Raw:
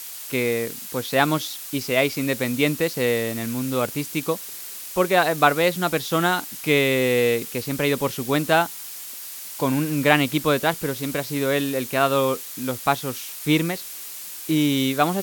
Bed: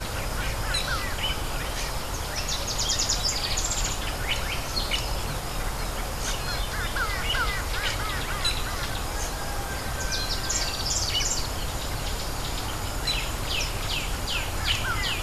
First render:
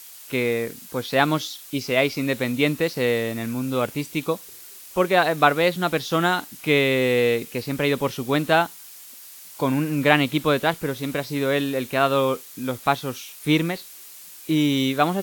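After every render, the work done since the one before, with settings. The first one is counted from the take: noise print and reduce 7 dB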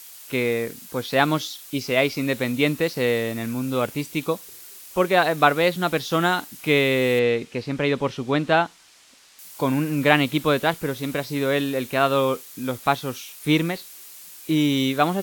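7.19–9.39 air absorption 88 m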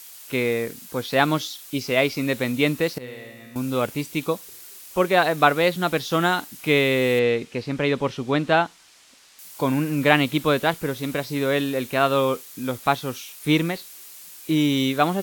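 2.98–3.56 resonator 63 Hz, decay 1.9 s, mix 90%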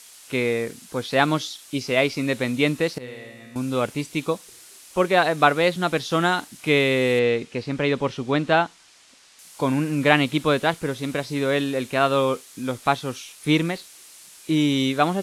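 LPF 11000 Hz 24 dB/oct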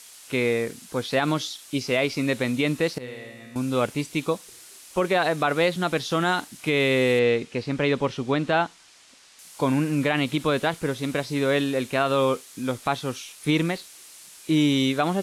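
limiter -12 dBFS, peak gain reduction 10 dB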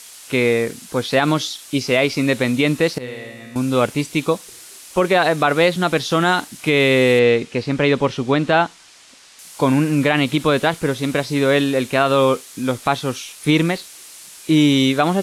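gain +6.5 dB

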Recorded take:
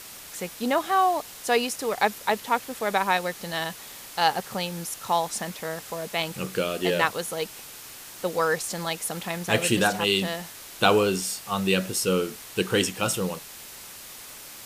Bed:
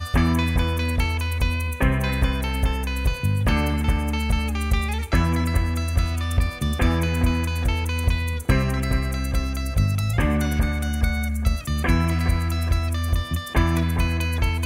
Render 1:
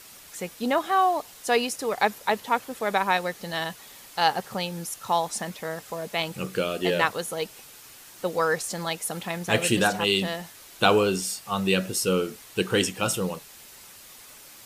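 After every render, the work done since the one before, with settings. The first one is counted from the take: denoiser 6 dB, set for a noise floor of -43 dBFS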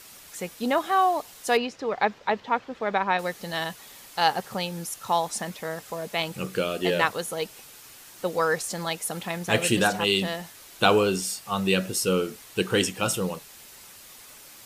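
1.57–3.19 air absorption 190 m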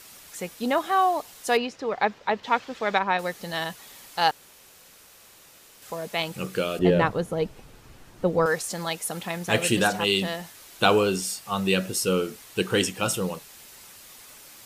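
2.43–2.99 high shelf 2300 Hz +11 dB; 4.31–5.82 room tone; 6.79–8.46 tilt -4 dB/oct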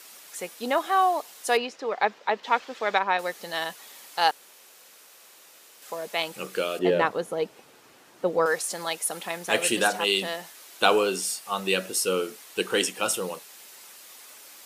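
HPF 330 Hz 12 dB/oct; dynamic EQ 9700 Hz, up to +5 dB, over -52 dBFS, Q 4.6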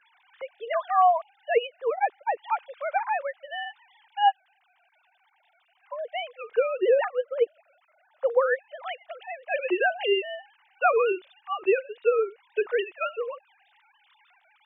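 sine-wave speech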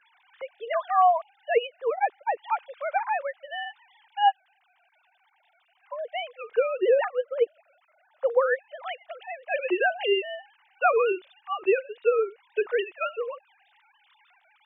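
nothing audible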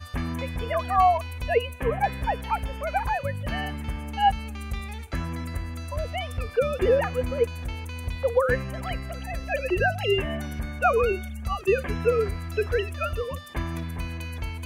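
add bed -10.5 dB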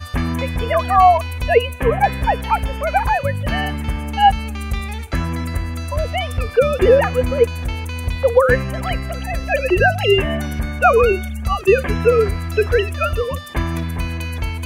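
gain +9 dB; limiter -2 dBFS, peak gain reduction 2.5 dB

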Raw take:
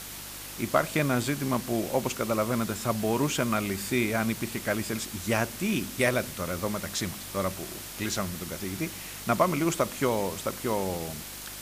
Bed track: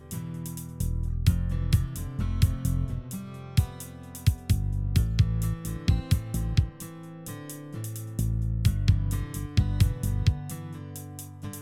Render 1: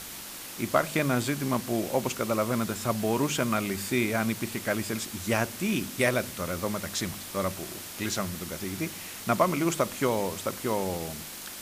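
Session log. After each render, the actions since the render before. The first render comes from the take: de-hum 50 Hz, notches 3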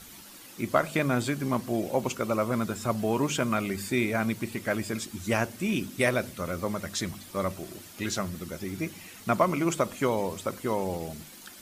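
denoiser 10 dB, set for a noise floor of -41 dBFS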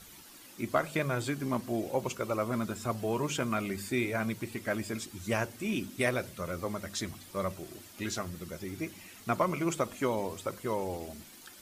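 flange 0.94 Hz, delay 1.7 ms, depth 1.7 ms, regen -65%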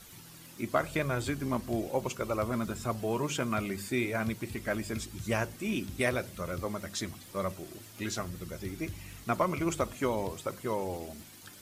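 add bed track -21 dB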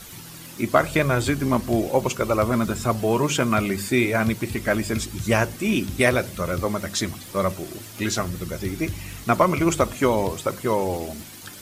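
gain +10.5 dB

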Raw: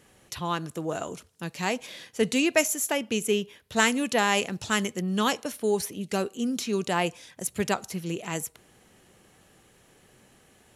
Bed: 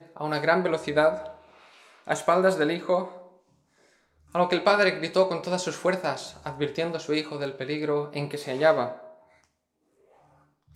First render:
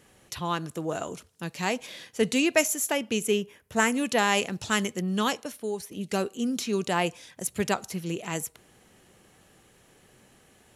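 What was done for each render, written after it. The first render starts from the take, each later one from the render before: 3.36–3.93 bell 3900 Hz -7.5 dB -> -15 dB 0.78 oct; 5.08–5.91 fade out, to -10.5 dB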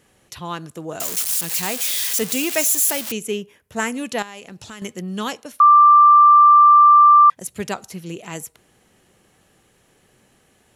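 1–3.12 switching spikes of -14.5 dBFS; 4.22–4.82 compressor 4:1, threshold -35 dBFS; 5.6–7.3 bleep 1180 Hz -6.5 dBFS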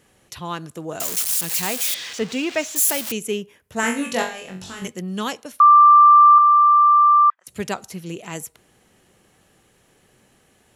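1.94–2.76 air absorption 150 m; 3.81–4.88 flutter echo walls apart 3.7 m, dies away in 0.39 s; 6.38–7.47 ladder band-pass 1400 Hz, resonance 60%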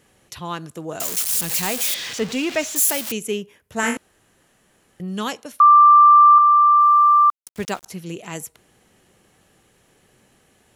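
1.34–2.86 zero-crossing step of -34.5 dBFS; 3.97–5 room tone; 6.8–7.86 sample gate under -37 dBFS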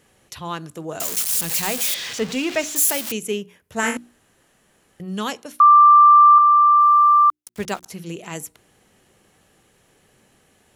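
notches 60/120/180/240/300/360 Hz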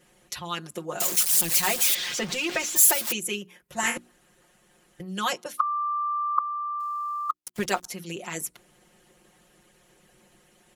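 harmonic-percussive split harmonic -12 dB; comb 5.6 ms, depth 99%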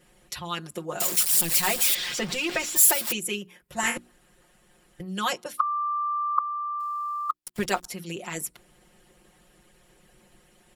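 low shelf 63 Hz +10.5 dB; notch 6300 Hz, Q 11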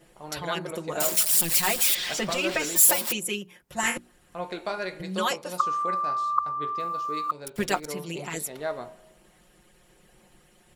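add bed -11 dB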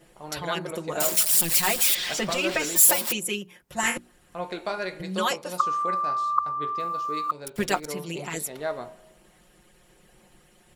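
gain +1 dB

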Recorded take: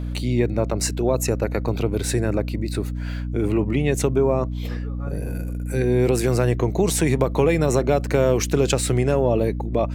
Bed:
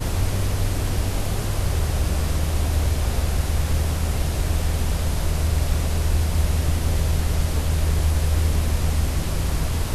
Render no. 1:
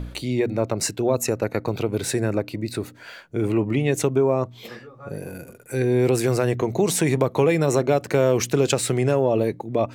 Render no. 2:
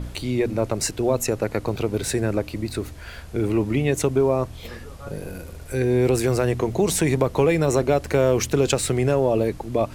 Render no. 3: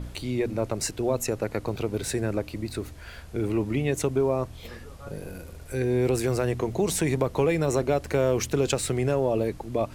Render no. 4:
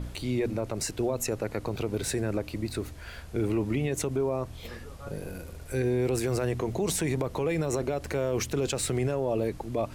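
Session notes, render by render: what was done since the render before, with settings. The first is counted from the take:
de-hum 60 Hz, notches 5
add bed -18.5 dB
gain -4.5 dB
limiter -19 dBFS, peak gain reduction 9.5 dB

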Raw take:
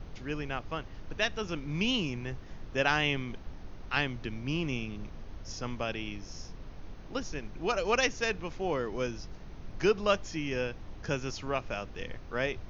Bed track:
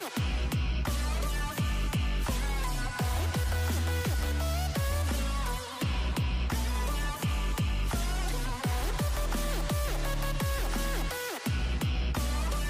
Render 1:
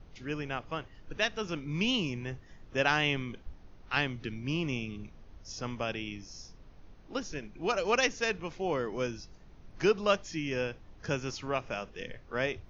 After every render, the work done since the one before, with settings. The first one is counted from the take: noise print and reduce 9 dB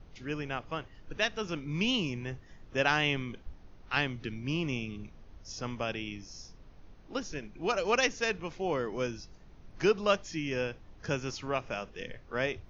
nothing audible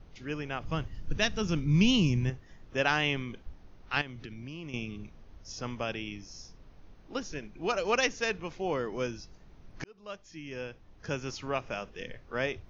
0.61–2.3 tone controls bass +13 dB, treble +7 dB; 4.01–4.74 compressor, threshold -38 dBFS; 9.84–11.43 fade in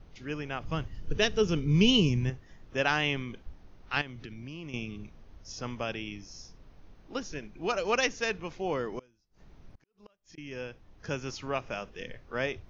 1.02–2.09 small resonant body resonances 430/3000 Hz, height 11 dB; 8.99–10.38 flipped gate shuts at -40 dBFS, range -29 dB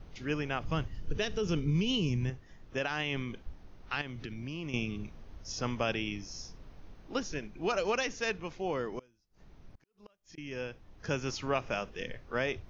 limiter -21 dBFS, peak gain reduction 10.5 dB; vocal rider within 4 dB 2 s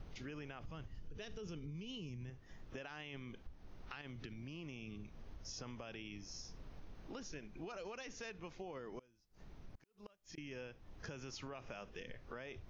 limiter -27.5 dBFS, peak gain reduction 9.5 dB; compressor 4:1, threshold -47 dBFS, peak gain reduction 14 dB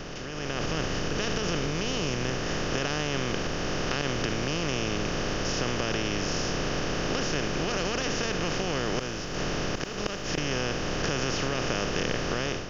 per-bin compression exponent 0.2; AGC gain up to 10 dB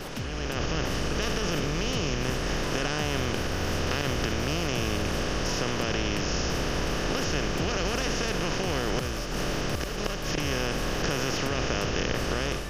add bed track -5.5 dB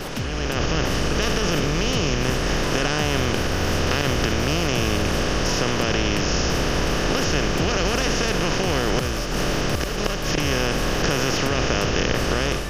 gain +6.5 dB

